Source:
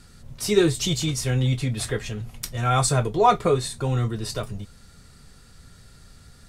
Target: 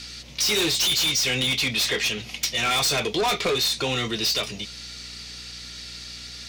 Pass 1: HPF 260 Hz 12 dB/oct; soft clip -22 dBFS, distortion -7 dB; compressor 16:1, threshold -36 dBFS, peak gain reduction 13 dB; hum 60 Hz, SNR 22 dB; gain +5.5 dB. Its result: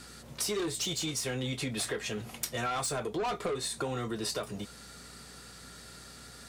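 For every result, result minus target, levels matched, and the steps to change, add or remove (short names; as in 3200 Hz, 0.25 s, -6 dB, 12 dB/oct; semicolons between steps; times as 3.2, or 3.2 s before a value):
compressor: peak gain reduction +9.5 dB; 4000 Hz band -4.0 dB
change: compressor 16:1, threshold -26 dBFS, peak gain reduction 3.5 dB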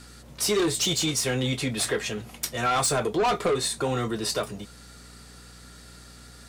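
4000 Hz band -4.5 dB
add after HPF: band shelf 3600 Hz +15.5 dB 1.9 oct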